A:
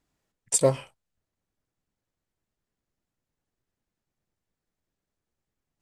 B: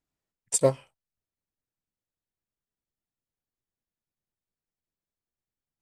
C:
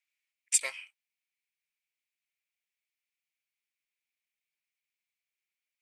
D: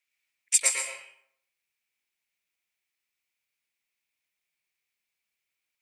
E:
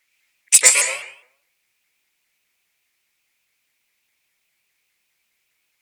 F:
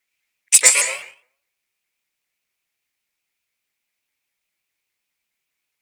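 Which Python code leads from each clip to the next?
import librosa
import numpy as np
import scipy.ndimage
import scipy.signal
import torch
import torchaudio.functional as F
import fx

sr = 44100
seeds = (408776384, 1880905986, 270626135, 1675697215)

y1 = fx.upward_expand(x, sr, threshold_db=-37.0, expansion=1.5)
y2 = fx.highpass_res(y1, sr, hz=2300.0, q=6.1)
y3 = y2 + 10.0 ** (-4.5 / 20.0) * np.pad(y2, (int(115 * sr / 1000.0), 0))[:len(y2)]
y3 = fx.rev_plate(y3, sr, seeds[0], rt60_s=0.66, hf_ratio=0.65, predelay_ms=105, drr_db=5.0)
y3 = y3 * 10.0 ** (3.5 / 20.0)
y4 = fx.fold_sine(y3, sr, drive_db=7, ceiling_db=-6.0)
y4 = fx.vibrato_shape(y4, sr, shape='saw_up', rate_hz=4.9, depth_cents=160.0)
y4 = y4 * 10.0 ** (3.0 / 20.0)
y5 = fx.law_mismatch(y4, sr, coded='A')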